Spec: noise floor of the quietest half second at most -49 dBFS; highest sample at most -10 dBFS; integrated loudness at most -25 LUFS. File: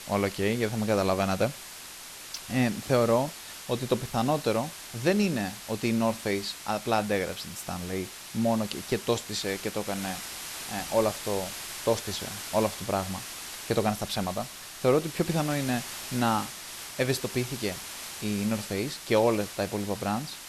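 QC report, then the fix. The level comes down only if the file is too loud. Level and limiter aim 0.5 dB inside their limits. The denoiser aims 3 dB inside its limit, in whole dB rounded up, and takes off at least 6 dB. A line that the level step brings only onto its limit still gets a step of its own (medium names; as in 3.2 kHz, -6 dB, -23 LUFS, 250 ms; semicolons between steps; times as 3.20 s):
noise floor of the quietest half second -44 dBFS: fail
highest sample -11.5 dBFS: pass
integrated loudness -29.0 LUFS: pass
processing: noise reduction 8 dB, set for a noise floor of -44 dBFS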